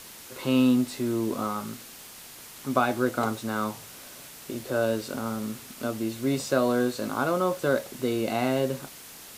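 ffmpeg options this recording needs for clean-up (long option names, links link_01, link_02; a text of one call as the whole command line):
ffmpeg -i in.wav -af "adeclick=threshold=4,afftdn=noise_reduction=27:noise_floor=-45" out.wav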